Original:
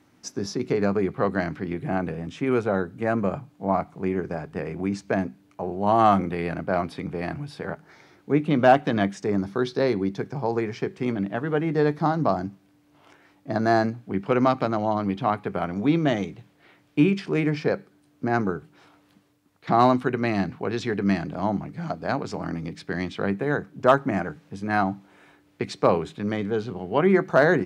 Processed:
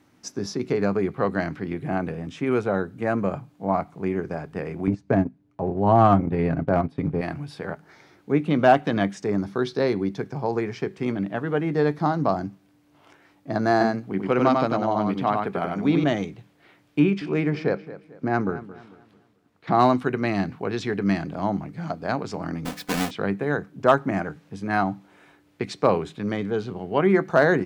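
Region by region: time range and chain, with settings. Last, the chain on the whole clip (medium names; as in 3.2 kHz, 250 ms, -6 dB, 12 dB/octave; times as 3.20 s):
4.87–7.21 s: tilt EQ -3 dB/octave + comb 7.4 ms, depth 35% + transient shaper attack -1 dB, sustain -12 dB
13.71–16.04 s: peaking EQ 89 Hz -9 dB 0.49 oct + delay 95 ms -3.5 dB
16.99–19.75 s: treble shelf 6.1 kHz -11 dB + filtered feedback delay 222 ms, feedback 36%, low-pass 4.3 kHz, level -15.5 dB
22.65–23.11 s: square wave that keeps the level + bass shelf 340 Hz -6 dB + comb 4 ms, depth 73%
whole clip: none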